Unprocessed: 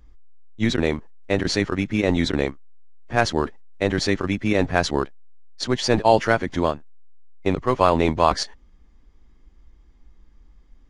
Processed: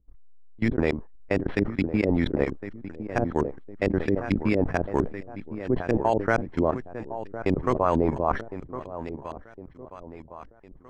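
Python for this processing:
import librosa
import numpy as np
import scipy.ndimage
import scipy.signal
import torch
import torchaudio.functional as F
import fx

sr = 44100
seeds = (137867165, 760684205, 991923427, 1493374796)

p1 = fx.level_steps(x, sr, step_db=22)
p2 = np.repeat(scipy.signal.resample_poly(p1, 1, 6), 6)[:len(p1)]
p3 = p2 + fx.echo_feedback(p2, sr, ms=1058, feedback_pct=42, wet_db=-12, dry=0)
p4 = fx.filter_lfo_lowpass(p3, sr, shape='saw_up', hz=4.4, low_hz=330.0, high_hz=3600.0, q=1.1)
y = fx.sustainer(p4, sr, db_per_s=130.0)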